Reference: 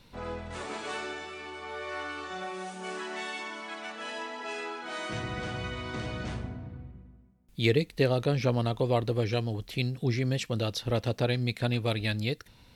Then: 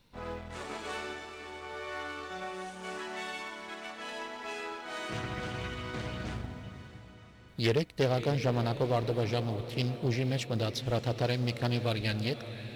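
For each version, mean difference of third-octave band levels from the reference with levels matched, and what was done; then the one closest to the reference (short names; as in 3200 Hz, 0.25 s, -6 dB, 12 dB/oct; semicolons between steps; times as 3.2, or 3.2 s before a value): 3.5 dB: G.711 law mismatch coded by A; diffused feedback echo 0.549 s, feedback 54%, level -13 dB; soft clip -18.5 dBFS, distortion -19 dB; Doppler distortion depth 0.31 ms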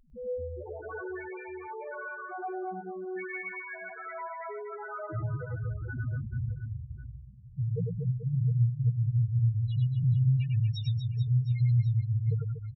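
19.5 dB: dynamic EQ 120 Hz, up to +6 dB, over -45 dBFS, Q 4.3; limiter -23.5 dBFS, peak gain reduction 12 dB; loudest bins only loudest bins 1; reverse bouncing-ball echo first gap 0.1 s, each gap 1.4×, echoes 5; gain +8 dB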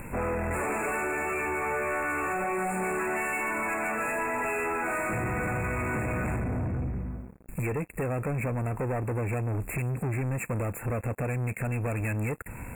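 11.0 dB: compressor 12:1, threshold -37 dBFS, peak gain reduction 18 dB; sample leveller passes 5; upward compressor, threshold -40 dBFS; brick-wall FIR band-stop 2700–6900 Hz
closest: first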